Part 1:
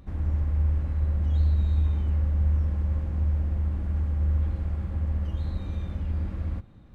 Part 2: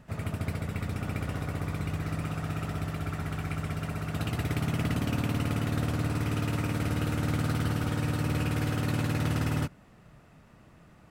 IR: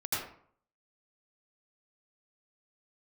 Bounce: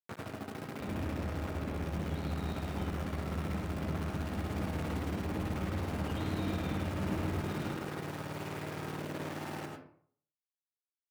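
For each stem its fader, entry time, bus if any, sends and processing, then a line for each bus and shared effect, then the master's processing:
−2.5 dB, 0.80 s, send −6 dB, no echo send, flat-topped bell 3,300 Hz +9 dB 1.3 octaves; flanger 1.9 Hz, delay 5.5 ms, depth 2.5 ms, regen −84%; envelope flattener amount 70%
−3.5 dB, 0.00 s, send −5.5 dB, echo send −6.5 dB, downward compressor 5 to 1, threshold −36 dBFS, peak gain reduction 10.5 dB; bit reduction 6 bits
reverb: on, RT60 0.55 s, pre-delay 74 ms
echo: single-tap delay 104 ms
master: high-pass filter 170 Hz 12 dB per octave; high-shelf EQ 2,400 Hz −12 dB

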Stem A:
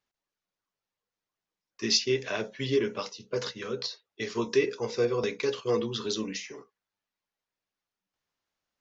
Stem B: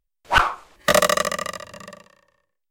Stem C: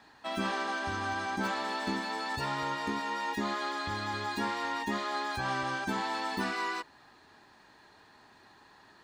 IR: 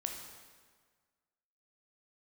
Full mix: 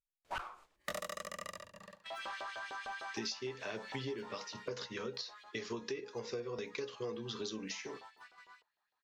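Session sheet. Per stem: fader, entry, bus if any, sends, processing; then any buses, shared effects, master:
−0.5 dB, 1.35 s, no send, no processing
−14.0 dB, 0.00 s, no send, no processing
0:04.28 −9.5 dB → 0:04.75 −21 dB, 1.80 s, no send, auto-filter high-pass saw up 6.6 Hz 490–3,300 Hz; soft clipping −25.5 dBFS, distortion −17 dB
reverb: not used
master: noise gate −53 dBFS, range −9 dB; downward compressor 8 to 1, threshold −38 dBFS, peak gain reduction 18.5 dB

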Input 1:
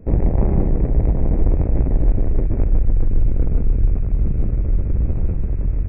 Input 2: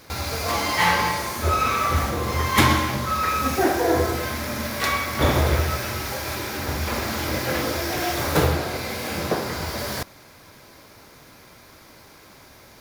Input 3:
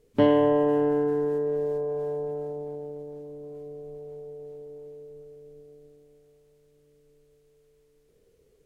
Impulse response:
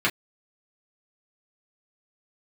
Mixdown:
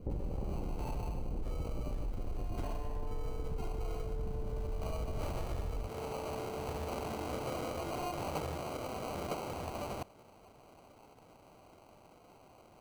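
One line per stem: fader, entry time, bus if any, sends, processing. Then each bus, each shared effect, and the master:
−8.0 dB, 0.00 s, bus A, no send, low-pass filter 1,100 Hz
0:04.25 −21 dB → 0:05.02 −13 dB, 0.00 s, no bus, no send, decimation without filtering 25×
−10.5 dB, 2.45 s, bus A, send −17.5 dB, downward compressor, threshold −30 dBFS, peak gain reduction 14 dB; leveller curve on the samples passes 2
bus A: 0.0 dB, Butterworth band-reject 680 Hz, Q 4.7; brickwall limiter −22 dBFS, peak gain reduction 8.5 dB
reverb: on, pre-delay 3 ms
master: parametric band 710 Hz +6 dB 1 octave; downward compressor 6 to 1, threshold −34 dBFS, peak gain reduction 11.5 dB

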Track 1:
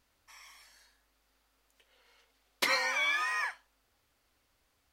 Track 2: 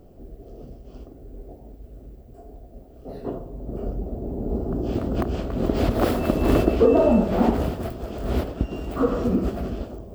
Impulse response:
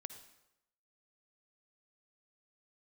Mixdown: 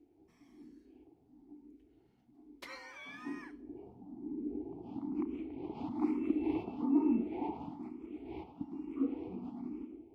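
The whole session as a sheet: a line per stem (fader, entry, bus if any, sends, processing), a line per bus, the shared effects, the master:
−19.5 dB, 0.00 s, send −10 dB, spectral tilt −1.5 dB per octave
+2.0 dB, 0.00 s, send −3 dB, formant filter u; tuned comb filter 81 Hz, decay 1.9 s, mix 50%; frequency shifter mixed with the dry sound +1.1 Hz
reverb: on, RT60 0.90 s, pre-delay 48 ms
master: no processing

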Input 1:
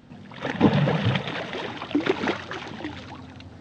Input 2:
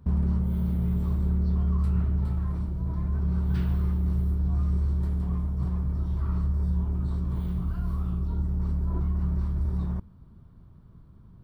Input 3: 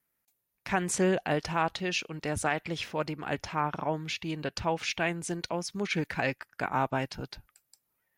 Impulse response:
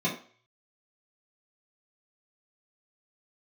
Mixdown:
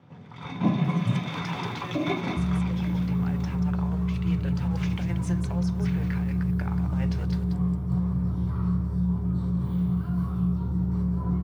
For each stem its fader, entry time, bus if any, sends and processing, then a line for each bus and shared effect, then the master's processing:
+2.0 dB, 0.00 s, bus A, send −17.5 dB, echo send −20 dB, lower of the sound and its delayed copy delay 0.87 ms
−0.5 dB, 2.30 s, no bus, send −13.5 dB, echo send −8.5 dB, no processing
−0.5 dB, 0.00 s, bus A, send −21 dB, echo send −16 dB, high-pass filter 700 Hz 6 dB per octave; compressor whose output falls as the input rises −37 dBFS, ratio −0.5; bit reduction 8 bits
bus A: 0.0 dB, high-shelf EQ 2,700 Hz −12 dB; downward compressor, threshold −32 dBFS, peak gain reduction 19 dB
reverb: on, RT60 0.45 s, pre-delay 3 ms
echo: single-tap delay 184 ms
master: high-pass filter 87 Hz 24 dB per octave; speech leveller within 3 dB 0.5 s

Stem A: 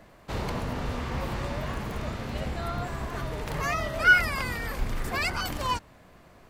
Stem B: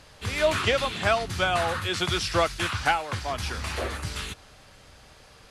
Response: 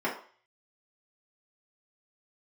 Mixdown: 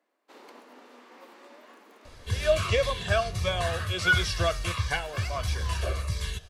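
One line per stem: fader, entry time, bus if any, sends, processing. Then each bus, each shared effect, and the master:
0.0 dB, 0.00 s, no send, Butterworth high-pass 250 Hz 48 dB per octave; notch filter 650 Hz, Q 19; expander for the loud parts 1.5 to 1, over −48 dBFS
+1.0 dB, 2.05 s, no send, low-shelf EQ 74 Hz +9.5 dB; comb filter 1.8 ms, depth 72%; phaser whose notches keep moving one way falling 1.5 Hz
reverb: not used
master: flanger 1.1 Hz, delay 8.5 ms, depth 3.3 ms, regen −87%

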